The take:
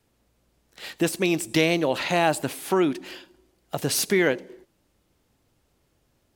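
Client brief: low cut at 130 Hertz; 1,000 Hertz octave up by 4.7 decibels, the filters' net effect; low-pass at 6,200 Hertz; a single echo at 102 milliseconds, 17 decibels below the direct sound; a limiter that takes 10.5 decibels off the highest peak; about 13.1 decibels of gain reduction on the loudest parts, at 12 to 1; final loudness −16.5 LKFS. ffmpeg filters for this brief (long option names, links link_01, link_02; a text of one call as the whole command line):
ffmpeg -i in.wav -af "highpass=130,lowpass=6200,equalizer=frequency=1000:width_type=o:gain=6.5,acompressor=threshold=-27dB:ratio=12,alimiter=limit=-23dB:level=0:latency=1,aecho=1:1:102:0.141,volume=19dB" out.wav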